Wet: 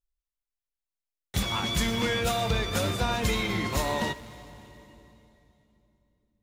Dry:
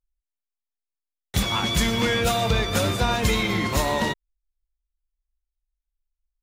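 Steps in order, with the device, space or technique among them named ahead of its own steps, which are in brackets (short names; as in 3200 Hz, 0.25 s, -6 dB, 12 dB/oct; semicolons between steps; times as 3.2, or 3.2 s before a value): saturated reverb return (on a send at -10 dB: reverb RT60 3.0 s, pre-delay 39 ms + soft clip -26 dBFS, distortion -8 dB); on the sum: gain -5 dB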